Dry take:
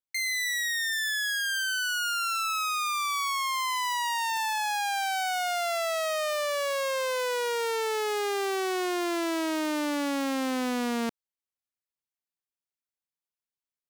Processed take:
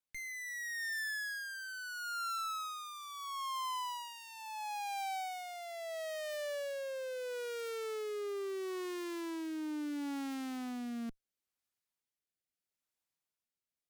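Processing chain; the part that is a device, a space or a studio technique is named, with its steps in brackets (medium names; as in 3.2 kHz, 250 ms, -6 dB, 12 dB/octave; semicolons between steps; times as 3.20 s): overdriven rotary cabinet (valve stage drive 44 dB, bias 0.65; rotary cabinet horn 0.75 Hz); trim +7 dB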